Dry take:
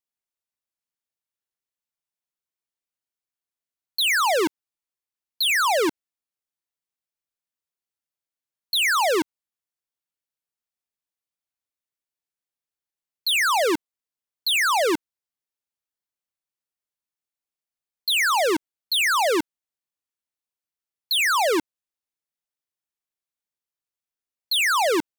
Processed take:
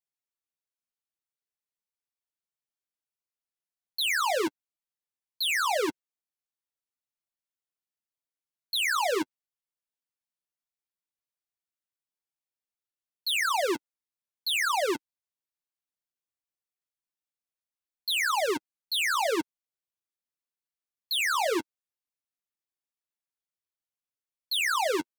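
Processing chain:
flanger 0.82 Hz, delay 5.4 ms, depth 5.1 ms, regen −13%
level −3 dB

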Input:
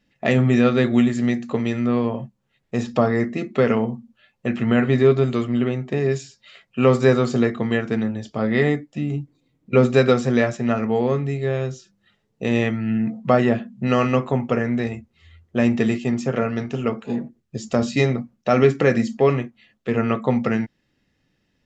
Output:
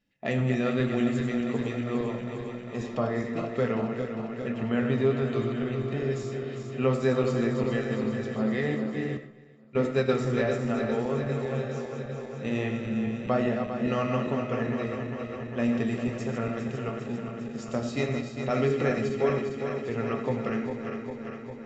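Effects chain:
feedback delay that plays each chunk backwards 201 ms, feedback 83%, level −7 dB
0:09.17–0:10.17: noise gate −16 dBFS, range −19 dB
flanger 1.1 Hz, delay 9.2 ms, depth 6.7 ms, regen −65%
on a send: convolution reverb RT60 0.60 s, pre-delay 40 ms, DRR 10 dB
on the sum: level −6 dB

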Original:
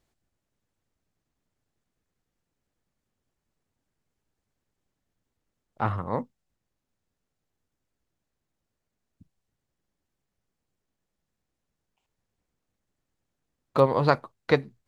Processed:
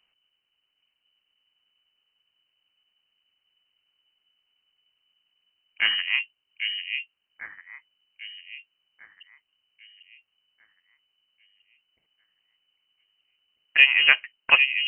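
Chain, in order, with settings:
delay that swaps between a low-pass and a high-pass 797 ms, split 960 Hz, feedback 51%, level −5 dB
voice inversion scrambler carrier 3,000 Hz
level +3.5 dB

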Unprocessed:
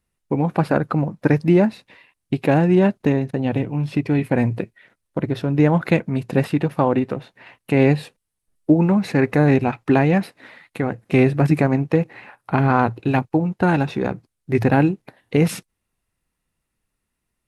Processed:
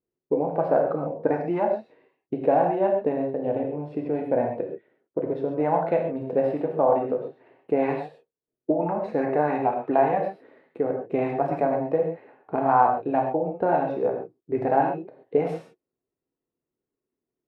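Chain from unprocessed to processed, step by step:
reverb whose tail is shaped and stops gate 160 ms flat, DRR 1 dB
envelope filter 370–1,000 Hz, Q 3, up, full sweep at −6 dBFS
level +2 dB

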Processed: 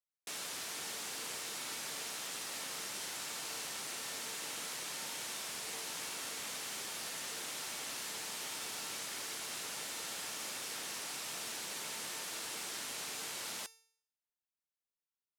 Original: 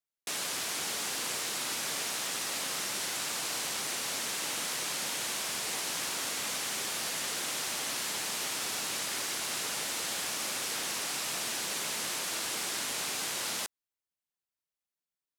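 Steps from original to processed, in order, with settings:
tuned comb filter 450 Hz, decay 0.59 s, mix 70%
level +2 dB

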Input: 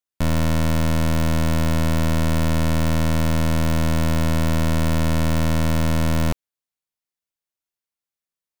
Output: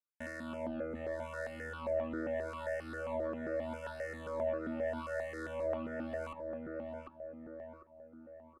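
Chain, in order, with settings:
on a send at −12 dB: convolution reverb RT60 0.65 s, pre-delay 3 ms
on the sum: LFO wah 0.8 Hz 470–1,900 Hz, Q 3.2
graphic EQ with 10 bands 1,000 Hz −8 dB, 2,000 Hz −11 dB, 4,000 Hz −6 dB
soft clipping −37 dBFS, distortion −9 dB
in parallel at −1 dB: compressor whose output falls as the input rises −45 dBFS, ratio −1
on the sum: low-pass filter 11,000 Hz 24 dB per octave
parametric band 250 Hz +10.5 dB 1.2 octaves
comb filter 3.4 ms, depth 83%
feedback echo with a low-pass in the loop 748 ms, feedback 47%, low-pass 2,000 Hz, level −3 dB
reverb reduction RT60 0.91 s
step-sequenced phaser 7.5 Hz 740–1,900 Hz

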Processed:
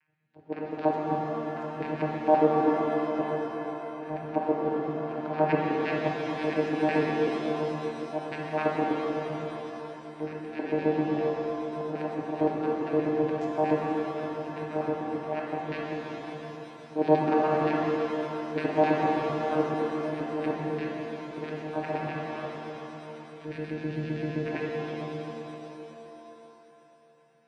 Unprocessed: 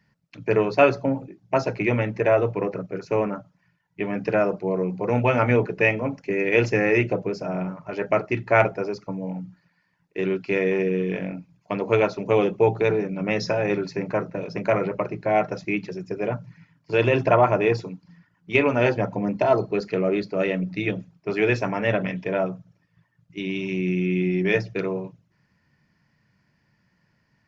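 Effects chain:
auto-filter band-pass square 7.7 Hz 530–1,800 Hz
volume swells 133 ms
channel vocoder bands 8, saw 154 Hz
reverb with rising layers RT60 3.5 s, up +7 semitones, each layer −8 dB, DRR −2.5 dB
level +2 dB

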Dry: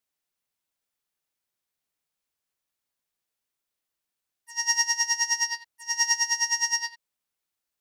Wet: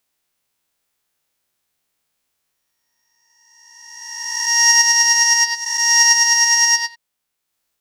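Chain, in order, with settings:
peak hold with a rise ahead of every peak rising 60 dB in 1.74 s
transient designer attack +2 dB, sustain −4 dB
level +8.5 dB

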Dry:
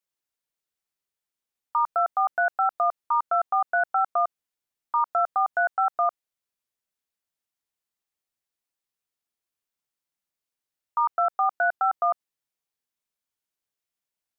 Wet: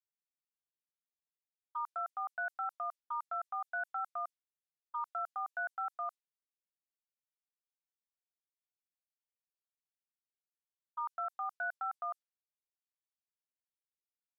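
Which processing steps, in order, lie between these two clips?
low-pass that shuts in the quiet parts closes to 320 Hz, open at −19.5 dBFS
first difference
level +1.5 dB

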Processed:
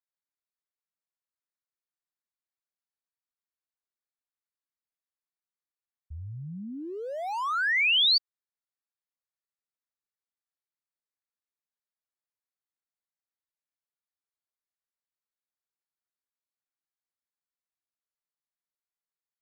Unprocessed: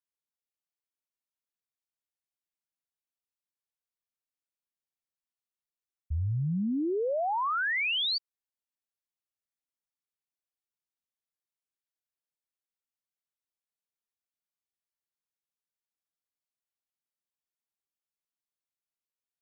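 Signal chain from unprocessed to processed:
adaptive Wiener filter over 15 samples
tilt shelving filter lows −9.5 dB, about 1,100 Hz

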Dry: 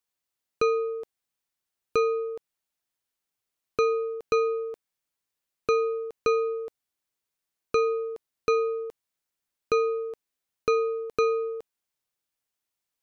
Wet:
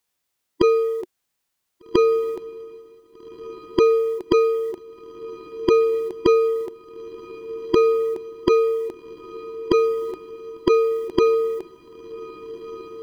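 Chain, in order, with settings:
formants moved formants −4 semitones
feedback delay with all-pass diffusion 1,624 ms, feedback 54%, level −16 dB
level +8.5 dB

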